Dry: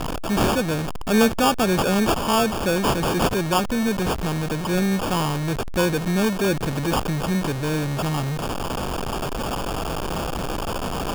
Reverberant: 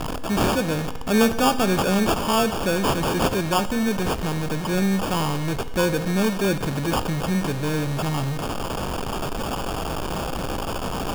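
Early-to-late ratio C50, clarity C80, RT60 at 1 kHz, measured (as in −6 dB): 13.0 dB, 14.5 dB, 1.4 s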